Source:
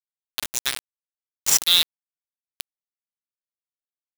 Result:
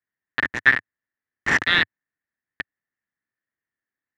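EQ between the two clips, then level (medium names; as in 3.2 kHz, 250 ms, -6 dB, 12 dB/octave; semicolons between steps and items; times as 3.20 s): resonant low-pass 1.8 kHz, resonance Q 11; peaking EQ 100 Hz +9.5 dB 1.3 oct; peaking EQ 270 Hz +9.5 dB 1.3 oct; +2.5 dB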